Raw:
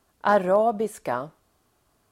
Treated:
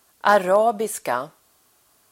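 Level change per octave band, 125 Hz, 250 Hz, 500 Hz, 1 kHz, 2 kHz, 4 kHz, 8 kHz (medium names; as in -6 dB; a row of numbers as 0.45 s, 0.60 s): -1.5 dB, -1.0 dB, +2.5 dB, +4.0 dB, +6.0 dB, no reading, +12.5 dB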